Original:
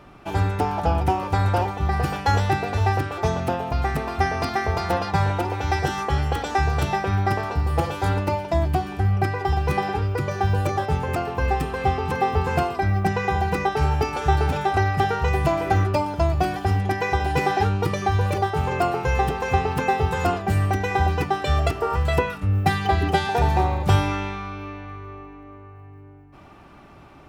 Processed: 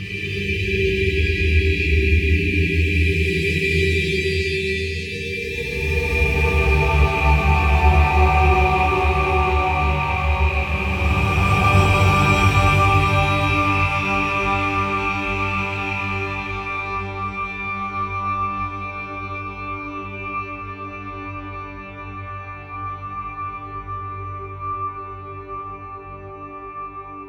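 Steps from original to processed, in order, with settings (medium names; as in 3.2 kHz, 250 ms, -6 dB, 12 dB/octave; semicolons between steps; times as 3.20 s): rattle on loud lows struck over -26 dBFS, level -18 dBFS; spectral selection erased 21.32–23.43 s, 480–1600 Hz; dynamic bell 1.4 kHz, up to -4 dB, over -43 dBFS, Q 2.6; Paulstretch 11×, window 0.25 s, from 22.83 s; small resonant body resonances 1.2/2.4 kHz, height 13 dB, ringing for 25 ms; reverberation, pre-delay 3 ms, DRR -6.5 dB; trim -6 dB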